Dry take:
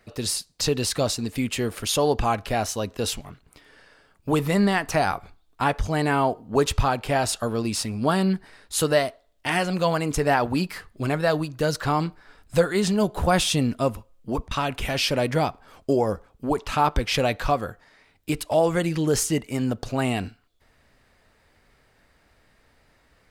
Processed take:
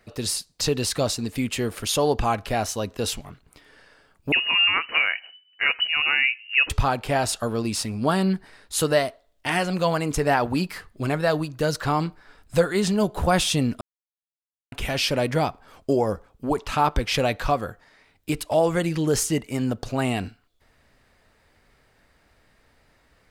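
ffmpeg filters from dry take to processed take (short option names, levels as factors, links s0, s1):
-filter_complex "[0:a]asettb=1/sr,asplit=3[s0][s1][s2];[s0]atrim=end=4.324[s3];[s1]atrim=start=4.32:end=6.7,asetpts=PTS-STARTPTS,afade=t=in:d=0.004:c=qsin,afade=t=out:st=2.376:d=0.004:c=qsin,lowpass=f=2600:t=q:w=0.5098,lowpass=f=2600:t=q:w=0.6013,lowpass=f=2600:t=q:w=0.9,lowpass=f=2600:t=q:w=2.563,afreqshift=-3000[s4];[s2]atrim=start=6.696[s5];[s3][s4]acrossfade=d=0.004:c1=hsin:c2=qsin[s6];[s6][s5]acrossfade=d=0.004:c1=qsin:c2=hsin,asplit=3[s7][s8][s9];[s7]atrim=end=13.81,asetpts=PTS-STARTPTS,afade=t=out:st=13.806:d=0.004:c=hsin[s10];[s8]atrim=start=13.81:end=14.72,asetpts=PTS-STARTPTS,volume=0[s11];[s9]atrim=start=14.72,asetpts=PTS-STARTPTS,afade=t=in:d=0.004:c=hsin[s12];[s10][s11][s12]concat=n=3:v=0:a=1"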